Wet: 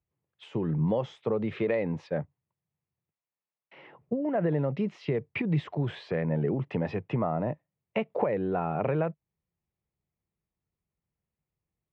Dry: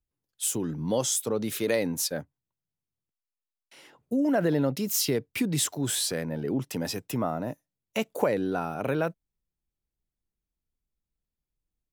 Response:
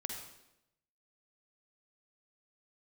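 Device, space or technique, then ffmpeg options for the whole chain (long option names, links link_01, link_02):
bass amplifier: -af "acompressor=threshold=-28dB:ratio=6,highpass=90,equalizer=frequency=94:width_type=q:width=4:gain=4,equalizer=frequency=150:width_type=q:width=4:gain=4,equalizer=frequency=270:width_type=q:width=4:gain=-8,equalizer=frequency=1500:width_type=q:width=4:gain=-8,lowpass=frequency=2300:width=0.5412,lowpass=frequency=2300:width=1.3066,volume=5.5dB"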